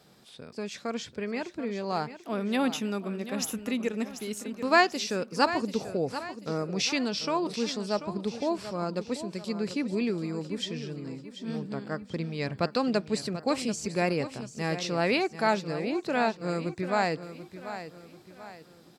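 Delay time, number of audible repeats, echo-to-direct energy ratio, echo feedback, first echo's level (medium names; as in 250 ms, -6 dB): 738 ms, 4, -11.0 dB, 42%, -12.0 dB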